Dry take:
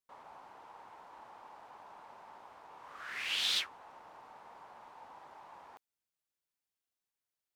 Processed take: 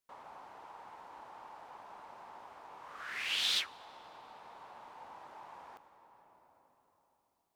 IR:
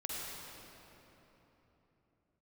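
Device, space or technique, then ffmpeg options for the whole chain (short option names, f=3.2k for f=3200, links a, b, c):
ducked reverb: -filter_complex "[0:a]asplit=3[a][b][c];[1:a]atrim=start_sample=2205[d];[b][d]afir=irnorm=-1:irlink=0[e];[c]apad=whole_len=333292[f];[e][f]sidechaincompress=threshold=-57dB:ratio=4:attack=21:release=1060,volume=-2.5dB[g];[a][g]amix=inputs=2:normalize=0"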